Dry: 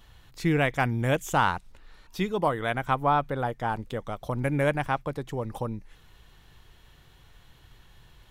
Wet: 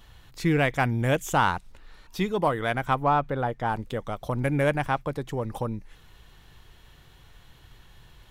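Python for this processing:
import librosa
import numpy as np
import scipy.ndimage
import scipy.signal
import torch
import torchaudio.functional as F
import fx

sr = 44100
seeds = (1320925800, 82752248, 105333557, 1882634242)

p1 = fx.high_shelf(x, sr, hz=fx.line((2.98, 4400.0), (3.65, 6900.0)), db=-10.0, at=(2.98, 3.65), fade=0.02)
p2 = 10.0 ** (-25.5 / 20.0) * np.tanh(p1 / 10.0 ** (-25.5 / 20.0))
y = p1 + F.gain(torch.from_numpy(p2), -10.5).numpy()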